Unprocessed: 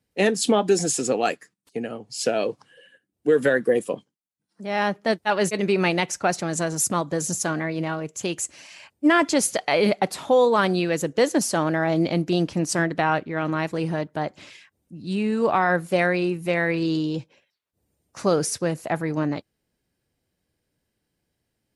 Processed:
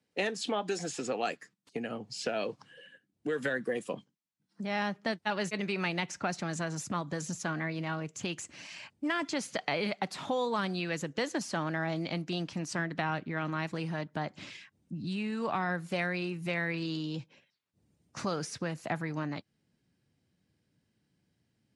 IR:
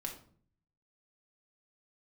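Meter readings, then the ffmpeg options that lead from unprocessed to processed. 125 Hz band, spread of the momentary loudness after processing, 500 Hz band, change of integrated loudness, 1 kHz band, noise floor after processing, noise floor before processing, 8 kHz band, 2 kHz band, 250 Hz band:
−8.0 dB, 9 LU, −13.5 dB, −11.5 dB, −10.5 dB, −79 dBFS, −79 dBFS, −15.0 dB, −8.5 dB, −11.0 dB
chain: -filter_complex "[0:a]asubboost=boost=4.5:cutoff=210,asplit=2[link_01][link_02];[link_02]acompressor=threshold=-28dB:ratio=6,volume=0.5dB[link_03];[link_01][link_03]amix=inputs=2:normalize=0,highpass=160,lowpass=7100,acrossover=split=630|3800[link_04][link_05][link_06];[link_04]acompressor=threshold=-29dB:ratio=4[link_07];[link_05]acompressor=threshold=-24dB:ratio=4[link_08];[link_06]acompressor=threshold=-37dB:ratio=4[link_09];[link_07][link_08][link_09]amix=inputs=3:normalize=0,volume=-7dB"

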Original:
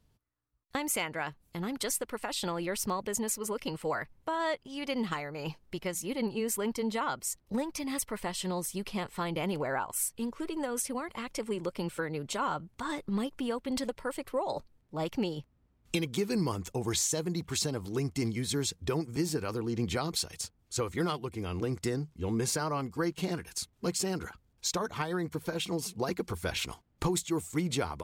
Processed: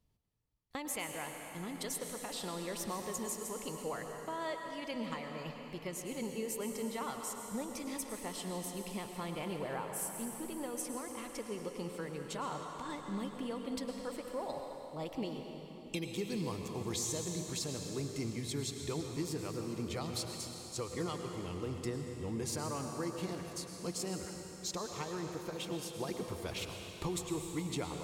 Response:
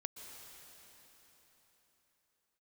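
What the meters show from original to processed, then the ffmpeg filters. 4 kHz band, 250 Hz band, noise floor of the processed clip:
−6.0 dB, −6.5 dB, −49 dBFS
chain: -filter_complex "[0:a]equalizer=frequency=1500:width=7.2:gain=-7.5[link_01];[1:a]atrim=start_sample=2205,asetrate=52920,aresample=44100[link_02];[link_01][link_02]afir=irnorm=-1:irlink=0,volume=-2dB"

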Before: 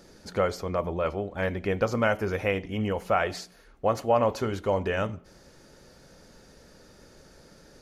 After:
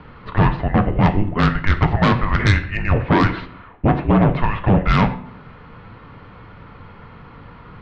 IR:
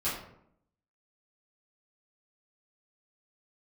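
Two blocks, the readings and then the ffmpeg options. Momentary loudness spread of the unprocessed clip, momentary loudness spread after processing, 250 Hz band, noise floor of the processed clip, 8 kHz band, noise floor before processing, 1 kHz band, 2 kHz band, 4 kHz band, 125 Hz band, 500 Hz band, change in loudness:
8 LU, 5 LU, +14.0 dB, −42 dBFS, can't be measured, −55 dBFS, +9.0 dB, +9.5 dB, +9.5 dB, +17.0 dB, +1.5 dB, +10.0 dB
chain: -filter_complex "[0:a]highpass=frequency=400:width_type=q:width=0.5412,highpass=frequency=400:width_type=q:width=1.307,lowpass=frequency=3000:width_type=q:width=0.5176,lowpass=frequency=3000:width_type=q:width=0.7071,lowpass=frequency=3000:width_type=q:width=1.932,afreqshift=-400,alimiter=limit=-16.5dB:level=0:latency=1:release=308,aeval=exprs='0.15*sin(PI/2*2*val(0)/0.15)':channel_layout=same,bandreject=frequency=126.3:width_type=h:width=4,bandreject=frequency=252.6:width_type=h:width=4,bandreject=frequency=378.9:width_type=h:width=4,bandreject=frequency=505.2:width_type=h:width=4,bandreject=frequency=631.5:width_type=h:width=4,bandreject=frequency=757.8:width_type=h:width=4,bandreject=frequency=884.1:width_type=h:width=4,bandreject=frequency=1010.4:width_type=h:width=4,bandreject=frequency=1136.7:width_type=h:width=4,bandreject=frequency=1263:width_type=h:width=4,bandreject=frequency=1389.3:width_type=h:width=4,bandreject=frequency=1515.6:width_type=h:width=4,bandreject=frequency=1641.9:width_type=h:width=4,bandreject=frequency=1768.2:width_type=h:width=4,bandreject=frequency=1894.5:width_type=h:width=4,bandreject=frequency=2020.8:width_type=h:width=4,bandreject=frequency=2147.1:width_type=h:width=4,bandreject=frequency=2273.4:width_type=h:width=4,bandreject=frequency=2399.7:width_type=h:width=4,bandreject=frequency=2526:width_type=h:width=4,bandreject=frequency=2652.3:width_type=h:width=4,bandreject=frequency=2778.6:width_type=h:width=4,bandreject=frequency=2904.9:width_type=h:width=4,bandreject=frequency=3031.2:width_type=h:width=4,bandreject=frequency=3157.5:width_type=h:width=4,bandreject=frequency=3283.8:width_type=h:width=4,bandreject=frequency=3410.1:width_type=h:width=4,bandreject=frequency=3536.4:width_type=h:width=4,bandreject=frequency=3662.7:width_type=h:width=4,bandreject=frequency=3789:width_type=h:width=4,bandreject=frequency=3915.3:width_type=h:width=4,bandreject=frequency=4041.6:width_type=h:width=4,bandreject=frequency=4167.9:width_type=h:width=4,bandreject=frequency=4294.2:width_type=h:width=4,asplit=2[link_01][link_02];[1:a]atrim=start_sample=2205,highshelf=frequency=5000:gain=9.5[link_03];[link_02][link_03]afir=irnorm=-1:irlink=0,volume=-18.5dB[link_04];[link_01][link_04]amix=inputs=2:normalize=0,volume=7dB"

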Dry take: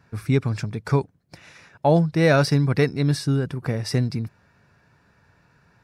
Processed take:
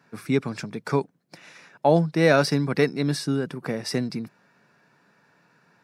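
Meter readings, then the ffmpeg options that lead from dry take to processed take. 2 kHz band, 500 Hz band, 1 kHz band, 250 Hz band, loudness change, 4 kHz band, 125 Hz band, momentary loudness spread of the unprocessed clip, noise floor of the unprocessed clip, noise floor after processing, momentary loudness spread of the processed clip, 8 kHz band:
0.0 dB, 0.0 dB, 0.0 dB, −1.5 dB, −2.0 dB, 0.0 dB, −7.0 dB, 10 LU, −62 dBFS, −66 dBFS, 14 LU, 0.0 dB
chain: -af "highpass=frequency=170:width=0.5412,highpass=frequency=170:width=1.3066"

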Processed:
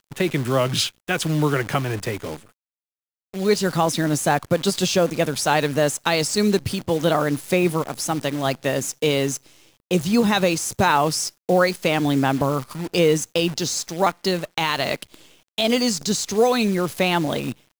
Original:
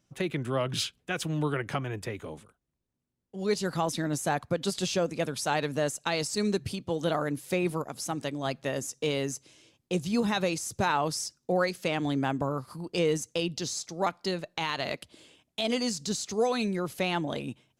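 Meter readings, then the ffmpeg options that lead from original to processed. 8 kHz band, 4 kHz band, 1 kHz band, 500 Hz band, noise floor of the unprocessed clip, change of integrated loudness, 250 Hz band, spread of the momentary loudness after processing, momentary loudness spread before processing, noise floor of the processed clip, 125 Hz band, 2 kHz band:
+9.5 dB, +9.0 dB, +9.0 dB, +9.0 dB, −81 dBFS, +9.0 dB, +9.0 dB, 6 LU, 7 LU, below −85 dBFS, +9.0 dB, +9.0 dB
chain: -af "acrusher=bits=8:dc=4:mix=0:aa=0.000001,volume=9dB"

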